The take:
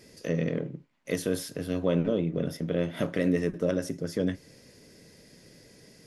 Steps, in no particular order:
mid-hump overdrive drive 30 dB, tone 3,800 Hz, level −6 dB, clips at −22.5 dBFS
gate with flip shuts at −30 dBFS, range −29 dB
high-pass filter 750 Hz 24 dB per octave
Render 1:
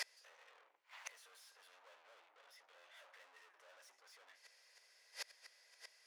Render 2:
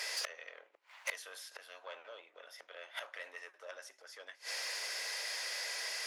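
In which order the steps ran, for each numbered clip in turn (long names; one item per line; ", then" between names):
mid-hump overdrive, then gate with flip, then high-pass filter
gate with flip, then mid-hump overdrive, then high-pass filter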